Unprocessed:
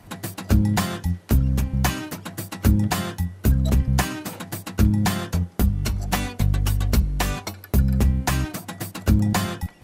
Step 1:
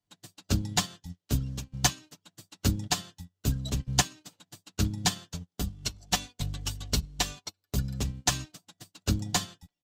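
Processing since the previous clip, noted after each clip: band shelf 4800 Hz +11 dB; comb 6.9 ms, depth 35%; upward expander 2.5:1, over -38 dBFS; gain -4.5 dB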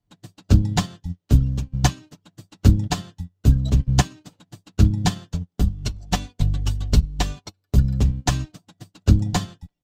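tilt -2.5 dB/oct; gain +4.5 dB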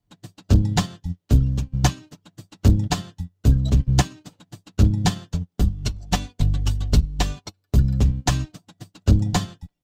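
soft clip -8 dBFS, distortion -16 dB; gain +1.5 dB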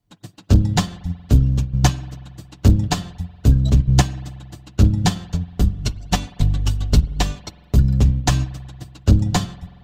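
spring tank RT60 2 s, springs 46 ms, chirp 70 ms, DRR 18.5 dB; gain +2.5 dB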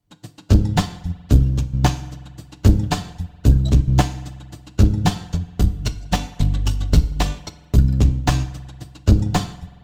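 added harmonics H 2 -12 dB, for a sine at -3 dBFS; FDN reverb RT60 0.64 s, low-frequency decay 0.85×, high-frequency decay 0.95×, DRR 13 dB; slew limiter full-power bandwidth 340 Hz

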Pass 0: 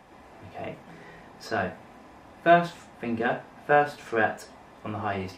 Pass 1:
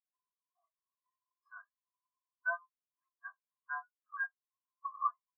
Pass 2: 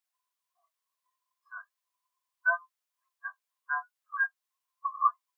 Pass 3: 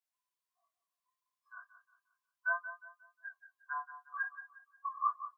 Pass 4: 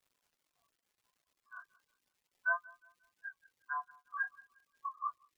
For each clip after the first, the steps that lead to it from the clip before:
compressor 2.5:1, threshold -35 dBFS, peak gain reduction 15 dB; ladder high-pass 1000 Hz, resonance 70%; spectral expander 4:1; gain +9 dB
HPF 650 Hz; gain +8.5 dB
spectral delete 2.87–3.33, 750–1500 Hz; chorus 0.66 Hz, depth 3.9 ms; feedback echo 0.179 s, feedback 35%, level -12 dB; gain -3.5 dB
ending faded out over 0.67 s; crackle 410/s -64 dBFS; reverb removal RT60 1.1 s; gain +1 dB

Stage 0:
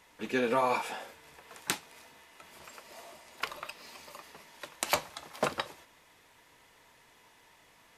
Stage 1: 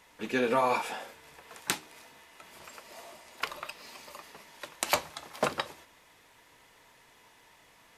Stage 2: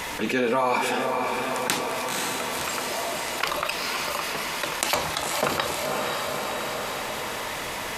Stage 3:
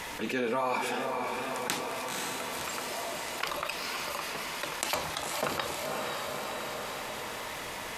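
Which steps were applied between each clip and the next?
de-hum 77.55 Hz, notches 5; gain +1.5 dB
diffused feedback echo 0.526 s, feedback 49%, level -11.5 dB; fast leveller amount 70%; gain +1 dB
wow and flutter 26 cents; gain -7 dB

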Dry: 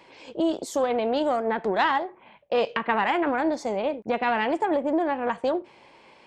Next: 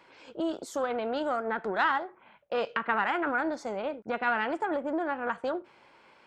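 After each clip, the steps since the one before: bell 1400 Hz +12 dB 0.42 oct; gain -7 dB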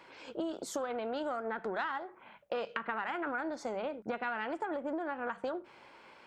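notches 50/100/150/200 Hz; compressor, threshold -35 dBFS, peak gain reduction 13.5 dB; gain +2 dB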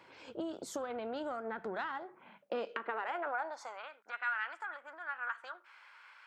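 high-pass sweep 83 Hz -> 1400 Hz, 1.71–3.89; gain -3.5 dB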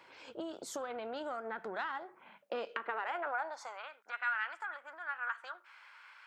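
low shelf 380 Hz -8.5 dB; gain +1.5 dB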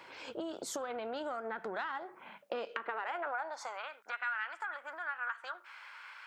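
compressor 2:1, threshold -45 dBFS, peak gain reduction 8.5 dB; gain +6 dB

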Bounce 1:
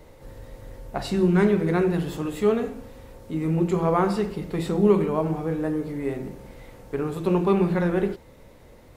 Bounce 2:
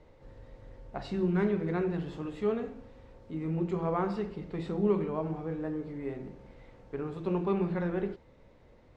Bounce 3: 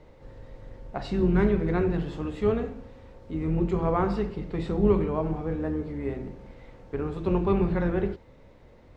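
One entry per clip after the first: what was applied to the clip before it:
air absorption 130 m; gain -8.5 dB
octaver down 2 oct, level -4 dB; gain +5 dB

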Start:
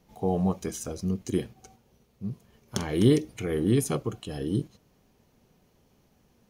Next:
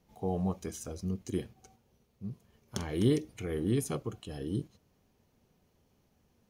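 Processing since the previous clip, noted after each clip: bell 85 Hz +6 dB 0.29 oct; gain -6.5 dB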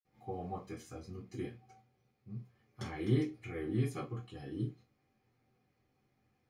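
reverb RT60 0.20 s, pre-delay 47 ms; gain +11 dB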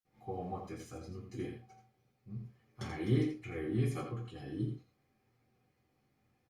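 echo 84 ms -7.5 dB; Opus 48 kbps 48000 Hz

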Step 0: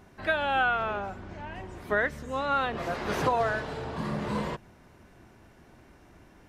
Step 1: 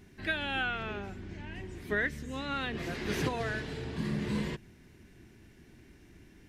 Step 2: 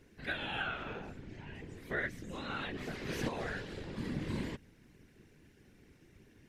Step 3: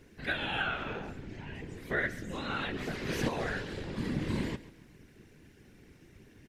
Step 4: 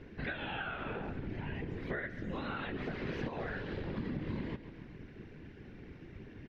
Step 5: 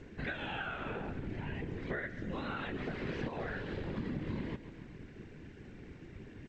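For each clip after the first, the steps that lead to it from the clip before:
band shelf 840 Hz -12 dB
whisperiser; gain -5 dB
feedback echo 0.137 s, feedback 38%, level -17.5 dB; gain +4.5 dB
compressor 6:1, threshold -42 dBFS, peak gain reduction 15 dB; air absorption 280 m; gain +7 dB
G.722 64 kbps 16000 Hz

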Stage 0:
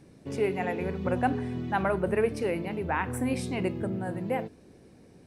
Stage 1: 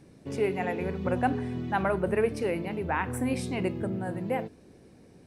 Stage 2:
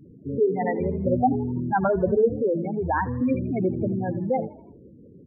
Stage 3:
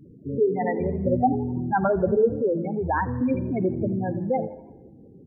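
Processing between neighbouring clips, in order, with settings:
nothing audible
spectral gate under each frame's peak -10 dB strong; frequency-shifting echo 82 ms, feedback 49%, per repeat +47 Hz, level -20 dB; gain +6.5 dB
plate-style reverb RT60 1.4 s, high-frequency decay 0.7×, DRR 17.5 dB

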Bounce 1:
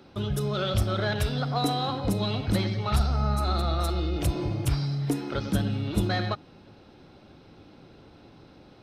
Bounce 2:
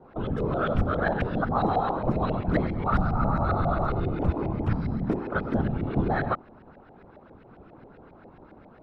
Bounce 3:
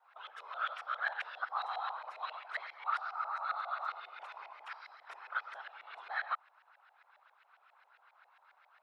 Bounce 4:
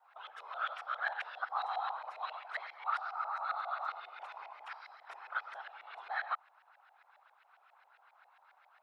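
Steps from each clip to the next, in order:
whisperiser; LFO low-pass saw up 7.4 Hz 630–2000 Hz
Bessel high-pass 1500 Hz, order 6; gain -1.5 dB
bell 770 Hz +5 dB 0.52 oct; gain -1 dB

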